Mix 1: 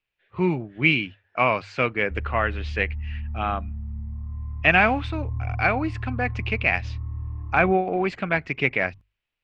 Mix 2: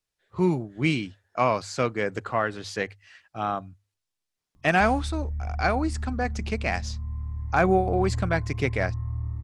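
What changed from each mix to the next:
speech: remove synth low-pass 2600 Hz, resonance Q 3.7; background: entry +2.70 s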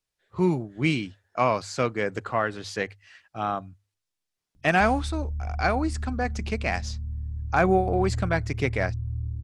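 background: add Gaussian blur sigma 17 samples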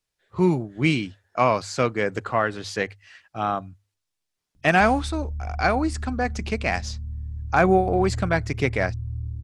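speech +3.0 dB

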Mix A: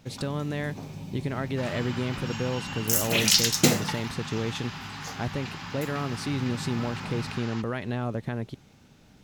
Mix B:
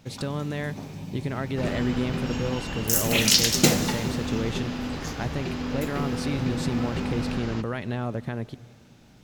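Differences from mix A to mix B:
speech: send on; first sound: send on; second sound: remove steep high-pass 770 Hz 72 dB/oct

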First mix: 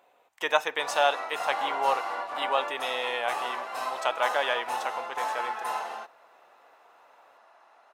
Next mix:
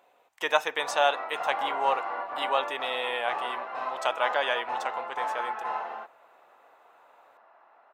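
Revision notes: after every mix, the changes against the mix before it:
background: add LPF 2100 Hz 12 dB/oct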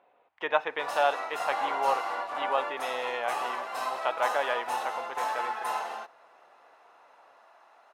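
speech: add air absorption 350 m; background: remove LPF 2100 Hz 12 dB/oct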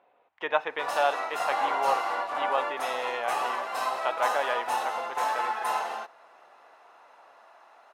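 background +3.0 dB

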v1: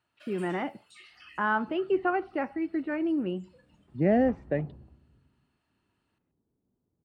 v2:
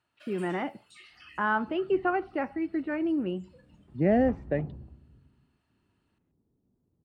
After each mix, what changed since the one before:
second sound: add low shelf 380 Hz +6.5 dB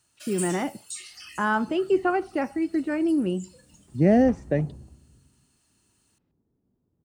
speech: add tilt -2.5 dB/oct; first sound: add high shelf 4400 Hz -5 dB; master: remove air absorption 480 m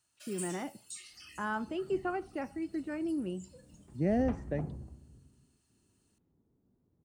speech -11.0 dB; first sound -8.5 dB

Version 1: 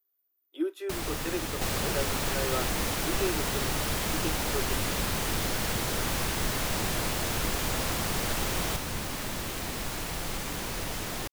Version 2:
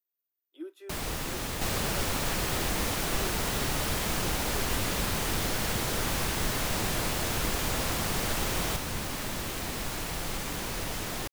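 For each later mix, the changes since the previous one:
speech -11.0 dB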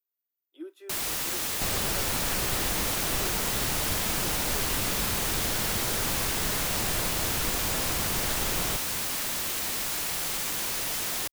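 first sound: add tilt +2.5 dB/oct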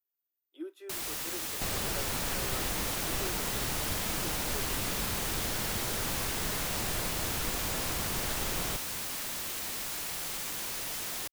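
first sound -6.0 dB; second sound -3.5 dB

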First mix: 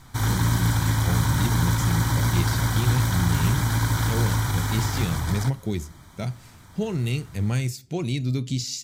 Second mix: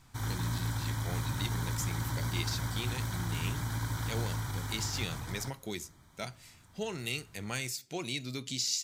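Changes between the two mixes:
speech: add HPF 1000 Hz 6 dB/oct; background -12.0 dB

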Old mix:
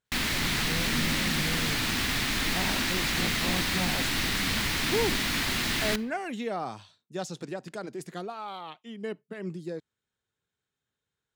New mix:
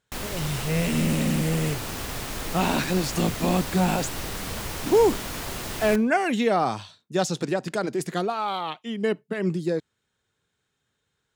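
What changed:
speech +10.5 dB; background: add graphic EQ 250/500/2000/4000 Hz -8/+7/-9/-8 dB

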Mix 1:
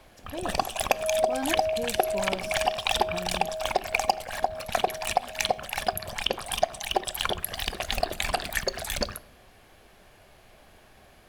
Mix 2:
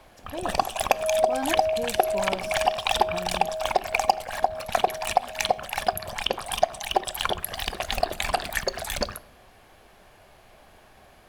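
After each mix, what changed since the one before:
master: add bell 900 Hz +4 dB 1.3 oct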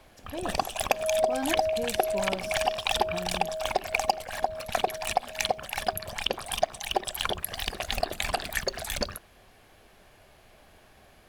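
first sound: send off; master: add bell 900 Hz -4 dB 1.3 oct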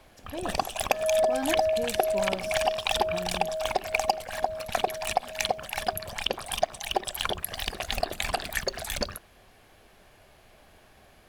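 second sound: remove ladder low-pass 760 Hz, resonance 45%

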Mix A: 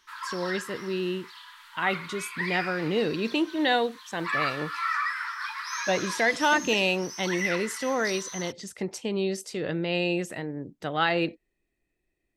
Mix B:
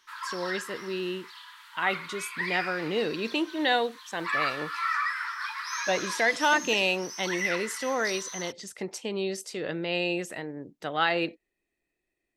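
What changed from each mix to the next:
master: add low shelf 200 Hz -11 dB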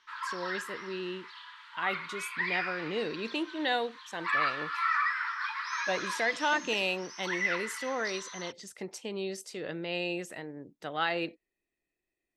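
speech -5.0 dB; background: add LPF 4000 Hz 12 dB/oct

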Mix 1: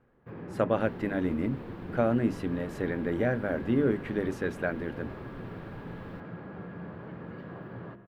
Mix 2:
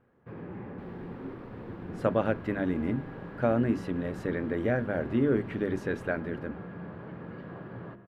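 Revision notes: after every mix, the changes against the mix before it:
speech: entry +1.45 s; second sound -4.5 dB; master: add high shelf 7000 Hz -6 dB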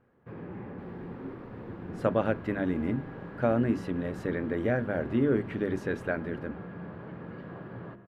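second sound -3.0 dB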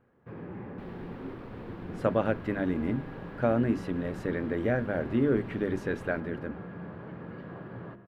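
second sound +8.0 dB

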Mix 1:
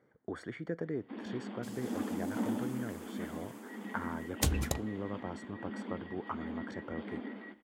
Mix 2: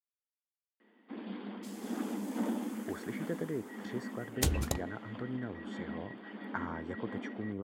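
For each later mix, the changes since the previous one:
speech: entry +2.60 s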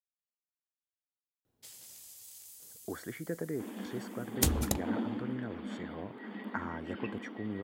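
first sound: entry +2.50 s; master: add high shelf 8100 Hz +9 dB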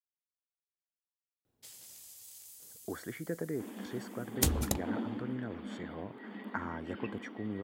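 first sound: send off; second sound: send off

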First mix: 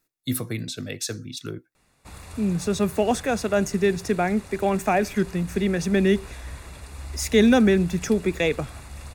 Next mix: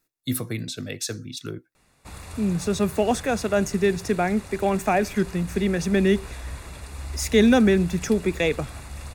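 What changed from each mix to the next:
background: send +7.0 dB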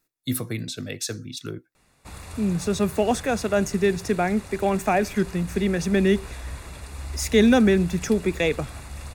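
none

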